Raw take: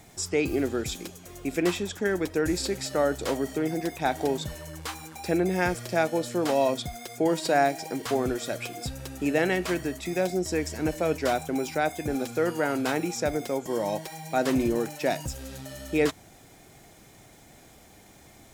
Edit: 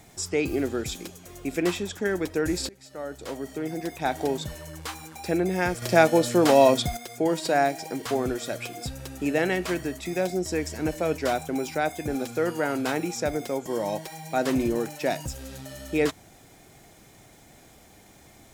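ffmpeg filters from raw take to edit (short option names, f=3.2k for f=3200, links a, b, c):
-filter_complex "[0:a]asplit=4[a][b][c][d];[a]atrim=end=2.69,asetpts=PTS-STARTPTS,afade=t=out:st=2.686:d=0.004:c=hsin:silence=0.0630957[e];[b]atrim=start=2.69:end=5.822,asetpts=PTS-STARTPTS,afade=t=in:d=1.47:silence=0.0630957[f];[c]atrim=start=5.818:end=6.972,asetpts=PTS-STARTPTS,volume=7dB[g];[d]atrim=start=6.968[h];[e][f]concat=n=2:v=0:a=1[i];[i][g]acrossfade=d=0.004:c1=hsin:c2=hsin[j];[j][h]acrossfade=d=0.004:c1=hsin:c2=hsin"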